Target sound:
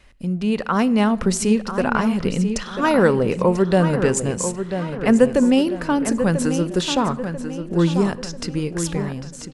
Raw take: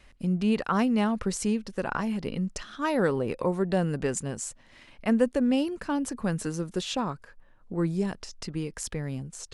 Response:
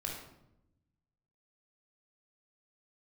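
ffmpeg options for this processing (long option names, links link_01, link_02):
-filter_complex "[0:a]dynaudnorm=framelen=130:gausssize=13:maxgain=6dB,asplit=2[link_01][link_02];[link_02]adelay=991,lowpass=frequency=4500:poles=1,volume=-8.5dB,asplit=2[link_03][link_04];[link_04]adelay=991,lowpass=frequency=4500:poles=1,volume=0.43,asplit=2[link_05][link_06];[link_06]adelay=991,lowpass=frequency=4500:poles=1,volume=0.43,asplit=2[link_07][link_08];[link_08]adelay=991,lowpass=frequency=4500:poles=1,volume=0.43,asplit=2[link_09][link_10];[link_10]adelay=991,lowpass=frequency=4500:poles=1,volume=0.43[link_11];[link_01][link_03][link_05][link_07][link_09][link_11]amix=inputs=6:normalize=0,asplit=2[link_12][link_13];[1:a]atrim=start_sample=2205,asetrate=37485,aresample=44100[link_14];[link_13][link_14]afir=irnorm=-1:irlink=0,volume=-18.5dB[link_15];[link_12][link_15]amix=inputs=2:normalize=0,volume=2.5dB"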